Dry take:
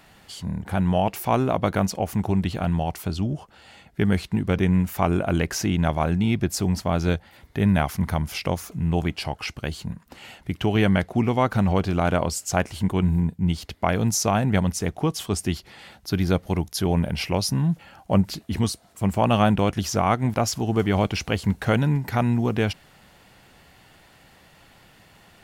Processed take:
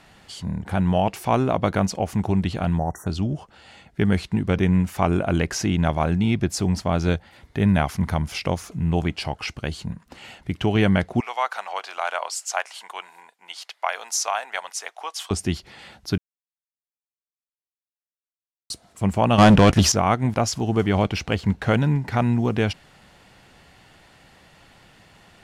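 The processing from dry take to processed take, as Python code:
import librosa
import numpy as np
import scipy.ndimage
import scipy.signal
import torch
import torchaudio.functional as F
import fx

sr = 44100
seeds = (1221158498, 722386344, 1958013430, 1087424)

y = fx.spec_erase(x, sr, start_s=2.78, length_s=0.29, low_hz=2000.0, high_hz=5600.0)
y = fx.highpass(y, sr, hz=740.0, slope=24, at=(11.2, 15.31))
y = fx.leveller(y, sr, passes=3, at=(19.38, 19.92))
y = fx.median_filter(y, sr, points=5, at=(20.92, 22.37))
y = fx.edit(y, sr, fx.silence(start_s=16.18, length_s=2.52), tone=tone)
y = scipy.signal.sosfilt(scipy.signal.butter(2, 9600.0, 'lowpass', fs=sr, output='sos'), y)
y = y * librosa.db_to_amplitude(1.0)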